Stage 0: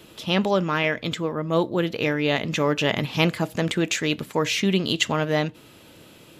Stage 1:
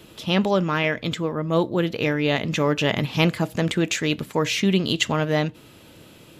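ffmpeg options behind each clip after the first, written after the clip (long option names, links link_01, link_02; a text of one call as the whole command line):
ffmpeg -i in.wav -af "lowshelf=frequency=180:gain=4.5" out.wav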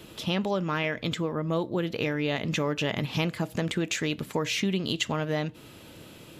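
ffmpeg -i in.wav -af "acompressor=threshold=-26dB:ratio=3" out.wav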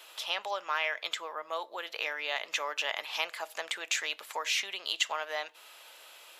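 ffmpeg -i in.wav -af "highpass=frequency=700:width=0.5412,highpass=frequency=700:width=1.3066" out.wav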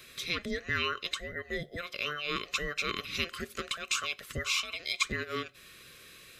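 ffmpeg -i in.wav -af "afftfilt=real='real(if(between(b,1,1008),(2*floor((b-1)/48)+1)*48-b,b),0)':imag='imag(if(between(b,1,1008),(2*floor((b-1)/48)+1)*48-b,b),0)*if(between(b,1,1008),-1,1)':win_size=2048:overlap=0.75" out.wav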